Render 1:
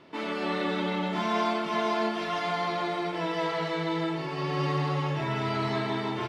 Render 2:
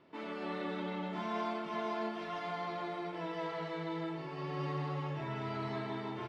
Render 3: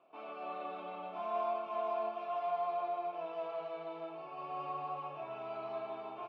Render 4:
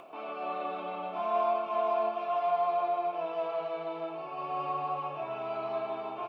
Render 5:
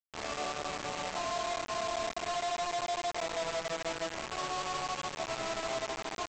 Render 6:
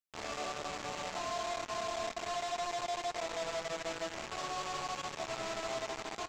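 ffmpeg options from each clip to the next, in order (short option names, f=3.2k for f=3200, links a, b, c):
-af "highshelf=f=3.3k:g=-8,volume=-9dB"
-filter_complex "[0:a]asplit=3[a][b][c];[a]bandpass=f=730:t=q:w=8,volume=0dB[d];[b]bandpass=f=1.09k:t=q:w=8,volume=-6dB[e];[c]bandpass=f=2.44k:t=q:w=8,volume=-9dB[f];[d][e][f]amix=inputs=3:normalize=0,volume=8.5dB"
-af "acompressor=mode=upward:threshold=-49dB:ratio=2.5,volume=7dB"
-af "alimiter=level_in=4.5dB:limit=-24dB:level=0:latency=1:release=328,volume=-4.5dB,aresample=16000,acrusher=bits=5:mix=0:aa=0.000001,aresample=44100"
-filter_complex "[0:a]asplit=2[a][b];[b]asoftclip=type=hard:threshold=-38dB,volume=-6.5dB[c];[a][c]amix=inputs=2:normalize=0,flanger=delay=8.6:depth=1.1:regen=-77:speed=1.9:shape=sinusoidal"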